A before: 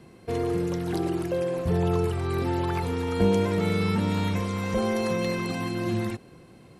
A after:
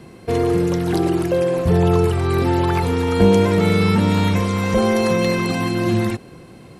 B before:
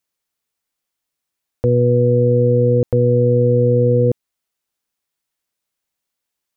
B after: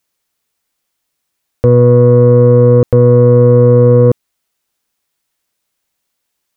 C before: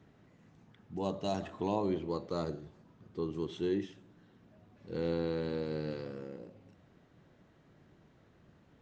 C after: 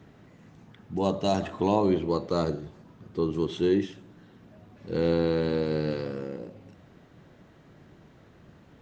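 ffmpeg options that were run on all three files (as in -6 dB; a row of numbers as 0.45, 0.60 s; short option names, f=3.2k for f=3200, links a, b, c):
-af "acontrast=65,volume=2.5dB"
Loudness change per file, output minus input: +9.0, +7.0, +9.0 LU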